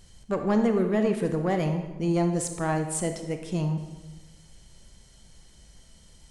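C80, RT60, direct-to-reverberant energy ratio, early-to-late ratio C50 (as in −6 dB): 9.5 dB, 1.2 s, 5.5 dB, 7.5 dB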